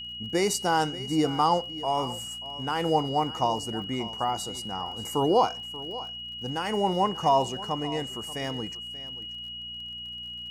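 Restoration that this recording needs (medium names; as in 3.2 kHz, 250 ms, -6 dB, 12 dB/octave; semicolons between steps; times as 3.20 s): de-click; de-hum 59.7 Hz, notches 4; band-stop 2.9 kHz, Q 30; inverse comb 584 ms -16.5 dB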